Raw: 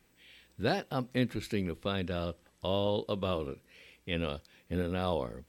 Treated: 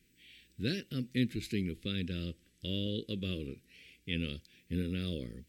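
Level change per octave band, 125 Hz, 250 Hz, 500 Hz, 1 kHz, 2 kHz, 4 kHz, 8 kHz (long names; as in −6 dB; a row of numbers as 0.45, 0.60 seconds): −0.5 dB, −0.5 dB, −9.5 dB, −25.0 dB, −3.5 dB, 0.0 dB, can't be measured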